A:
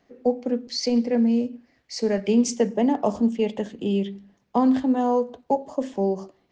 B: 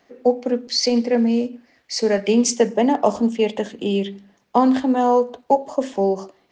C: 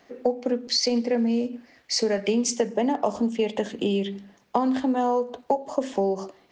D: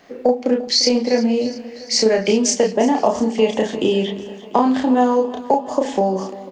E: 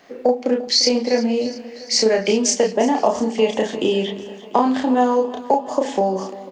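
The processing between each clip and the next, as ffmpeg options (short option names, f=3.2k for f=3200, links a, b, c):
-af "lowshelf=f=270:g=-11,volume=8dB"
-af "acompressor=threshold=-24dB:ratio=4,volume=2.5dB"
-filter_complex "[0:a]asplit=2[a][b];[b]adelay=32,volume=-2.5dB[c];[a][c]amix=inputs=2:normalize=0,aecho=1:1:347|694|1041|1388|1735|2082:0.141|0.0833|0.0492|0.029|0.0171|0.0101,volume=6dB"
-af "lowshelf=f=190:g=-6.5"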